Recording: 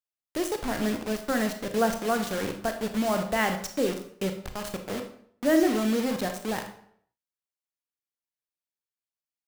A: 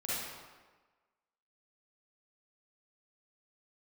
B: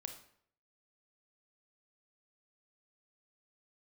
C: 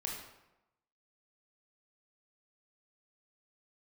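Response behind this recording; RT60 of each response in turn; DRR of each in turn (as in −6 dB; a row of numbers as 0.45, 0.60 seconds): B; 1.3, 0.65, 0.95 seconds; −10.0, 5.5, −1.5 decibels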